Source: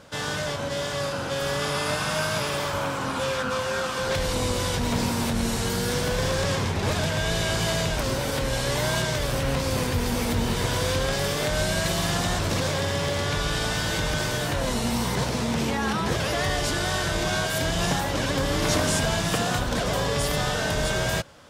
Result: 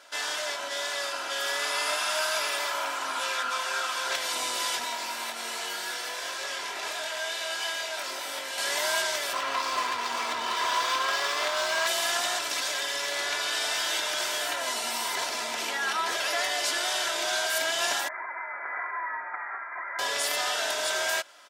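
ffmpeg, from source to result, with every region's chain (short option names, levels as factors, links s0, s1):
-filter_complex "[0:a]asettb=1/sr,asplit=3[s0][s1][s2];[s0]atrim=end=4.844[s3];[s1]atrim=start=4.84:end=8.58,asetpts=PTS-STARTPTS,afade=t=in:d=0.004:c=qsin,afade=t=out:st=3.736:d=0.004:c=qsin,acrossover=split=310|4500[s4][s5][s6];[s4]acompressor=threshold=0.0126:ratio=4[s7];[s5]acompressor=threshold=0.0251:ratio=4[s8];[s6]acompressor=threshold=0.00631:ratio=4[s9];[s7][s8][s9]amix=inputs=3:normalize=0,asplit=2[s10][s11];[s11]adelay=22,volume=0.708[s12];[s10][s12]amix=inputs=2:normalize=0,atrim=end_sample=164934[s13];[s2]atrim=start=8.576[s14];[s3][s13]acrossfade=d=0.004:c1=hsin:c2=qsin[s15];[s15][s14]acrossfade=d=0.004:c1=qsin:c2=hsin,asettb=1/sr,asplit=3[s16][s17][s18];[s16]atrim=end=9.334[s19];[s17]atrim=start=9.33:end=11.87,asetpts=PTS-STARTPTS,afade=t=in:d=0.004:c=qsin,afade=t=out:st=2.536:d=0.004:c=qsin,lowpass=8400,equalizer=f=1100:w=4.7:g=13,adynamicsmooth=sensitivity=7.5:basefreq=3700[s20];[s18]atrim=start=11.866[s21];[s19][s20]acrossfade=d=0.004:c1=hsin:c2=qsin[s22];[s22][s21]acrossfade=d=0.004:c1=qsin:c2=hsin,asettb=1/sr,asplit=3[s23][s24][s25];[s23]atrim=end=12.414[s26];[s24]atrim=start=12.41:end=13.12,asetpts=PTS-STARTPTS,afade=t=in:d=0.004:c=qsin,afade=t=out:st=0.706:d=0.004:c=qsin,highpass=94,equalizer=f=600:w=0.4:g=-3.5,aecho=1:1:6.9:0.33,atrim=end_sample=31311[s27];[s25]atrim=start=13.116[s28];[s26][s27]acrossfade=d=0.004:c1=hsin:c2=qsin[s29];[s29][s28]acrossfade=d=0.004:c1=qsin:c2=hsin,asettb=1/sr,asplit=3[s30][s31][s32];[s30]atrim=end=18.084[s33];[s31]atrim=start=18.08:end=19.99,asetpts=PTS-STARTPTS,afade=t=in:d=0.004:c=qsin,afade=t=out:st=1.906:d=0.004:c=qsin,highpass=1200,lowpass=f=2200:t=q:w=0.5098,lowpass=f=2200:t=q:w=0.6013,lowpass=f=2200:t=q:w=0.9,lowpass=f=2200:t=q:w=2.563,afreqshift=-2600[s34];[s32]atrim=start=19.986[s35];[s33][s34]acrossfade=d=0.004:c1=hsin:c2=qsin[s36];[s36][s35]acrossfade=d=0.004:c1=qsin:c2=hsin,highpass=840,bandreject=f=1100:w=14,aecho=1:1:3:0.54"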